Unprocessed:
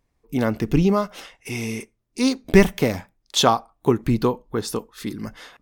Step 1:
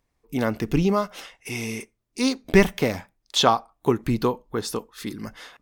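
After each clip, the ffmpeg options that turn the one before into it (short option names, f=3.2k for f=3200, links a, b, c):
-filter_complex "[0:a]lowshelf=f=460:g=-4,acrossover=split=5700[a][b];[b]alimiter=level_in=0.5dB:limit=-24dB:level=0:latency=1:release=385,volume=-0.5dB[c];[a][c]amix=inputs=2:normalize=0"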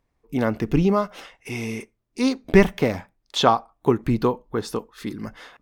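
-af "highshelf=f=3.3k:g=-9,volume=2dB"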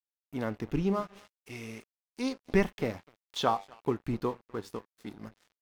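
-af "flanger=delay=8.5:depth=2.7:regen=84:speed=0.36:shape=triangular,aecho=1:1:249:0.0841,aeval=exprs='sgn(val(0))*max(abs(val(0))-0.0075,0)':c=same,volume=-5.5dB"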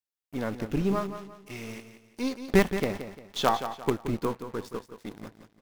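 -filter_complex "[0:a]asplit=2[a][b];[b]acrusher=bits=4:dc=4:mix=0:aa=0.000001,volume=-4.5dB[c];[a][c]amix=inputs=2:normalize=0,aecho=1:1:174|348|522|696:0.299|0.104|0.0366|0.0128"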